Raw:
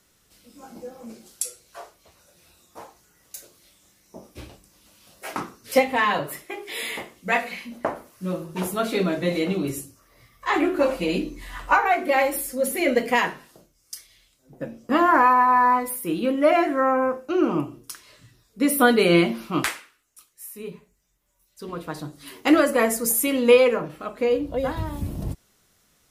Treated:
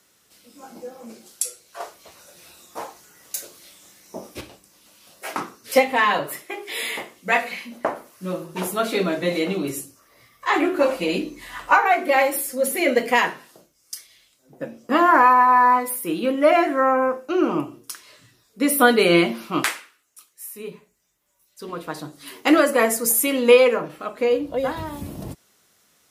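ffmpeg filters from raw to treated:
-filter_complex "[0:a]asettb=1/sr,asplit=3[s0][s1][s2];[s0]atrim=end=1.804[s3];[s1]atrim=start=1.8:end=4.41,asetpts=PTS-STARTPTS,afade=t=in:d=0.004:c=qsin,afade=t=out:st=2.606:d=0.004:c=qsin,acontrast=69[s4];[s2]atrim=start=4.406[s5];[s3][s4]acrossfade=d=0.004:c1=hsin:c2=qsin[s6];[s6][s5]acrossfade=d=0.004:c1=qsin:c2=hsin,highpass=f=270:p=1,volume=1.41"

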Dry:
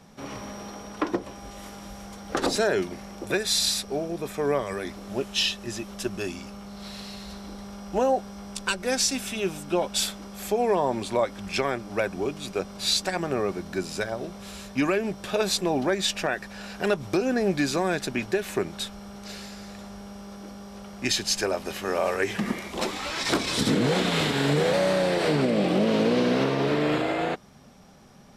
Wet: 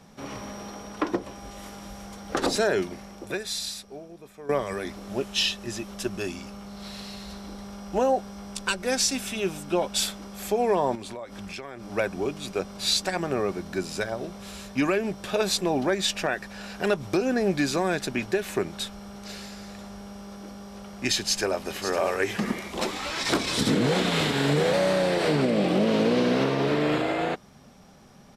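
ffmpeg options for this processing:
-filter_complex "[0:a]asettb=1/sr,asplit=3[s0][s1][s2];[s0]atrim=end=10.954[s3];[s1]atrim=start=10.95:end=11.92,asetpts=PTS-STARTPTS,afade=t=in:d=0.004:c=qsin,afade=t=out:st=0.966:d=0.004:c=qsin,acompressor=threshold=0.02:ratio=6:attack=3.2:release=140:knee=1:detection=peak[s4];[s2]atrim=start=11.916[s5];[s3][s4]acrossfade=d=0.004:c1=hsin:c2=qsin[s6];[s6][s5]acrossfade=d=0.004:c1=qsin:c2=hsin,asplit=2[s7][s8];[s8]afade=t=in:st=21.2:d=0.01,afade=t=out:st=21.9:d=0.01,aecho=0:1:550|1100|1650:0.298538|0.0597077|0.0119415[s9];[s7][s9]amix=inputs=2:normalize=0,asplit=2[s10][s11];[s10]atrim=end=4.49,asetpts=PTS-STARTPTS,afade=t=out:st=2.79:d=1.7:c=qua:silence=0.16788[s12];[s11]atrim=start=4.49,asetpts=PTS-STARTPTS,afade=t=in:d=0.004:c=hsin:silence=0.16788[s13];[s12][s13]concat=n=2:v=0:a=1"

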